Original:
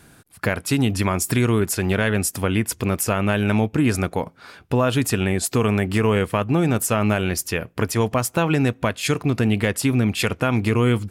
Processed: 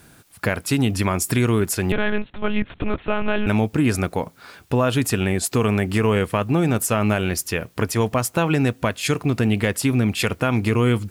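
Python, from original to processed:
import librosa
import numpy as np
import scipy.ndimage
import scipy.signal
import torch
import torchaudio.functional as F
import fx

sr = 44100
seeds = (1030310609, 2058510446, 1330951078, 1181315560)

y = fx.quant_dither(x, sr, seeds[0], bits=10, dither='triangular')
y = fx.lpc_monotone(y, sr, seeds[1], pitch_hz=210.0, order=8, at=(1.92, 3.47))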